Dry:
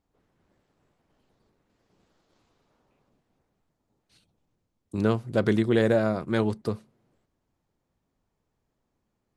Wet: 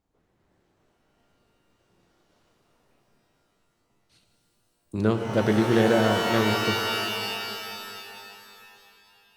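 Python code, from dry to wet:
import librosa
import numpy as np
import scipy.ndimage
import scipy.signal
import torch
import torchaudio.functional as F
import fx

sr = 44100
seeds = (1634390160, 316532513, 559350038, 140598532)

y = fx.rev_shimmer(x, sr, seeds[0], rt60_s=2.8, semitones=12, shimmer_db=-2, drr_db=4.5)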